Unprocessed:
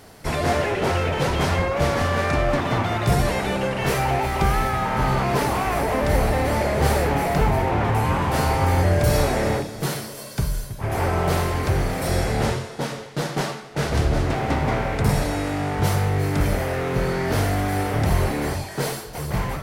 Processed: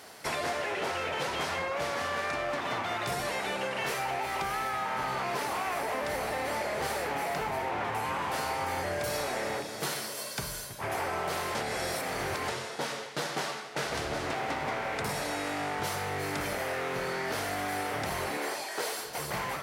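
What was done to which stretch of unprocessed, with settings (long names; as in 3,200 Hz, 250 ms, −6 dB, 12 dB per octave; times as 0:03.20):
0:11.55–0:12.48: reverse
0:18.37–0:18.99: Chebyshev high-pass filter 360 Hz
whole clip: high-pass filter 820 Hz 6 dB per octave; high-shelf EQ 11,000 Hz −4 dB; downward compressor, threshold −31 dBFS; level +1.5 dB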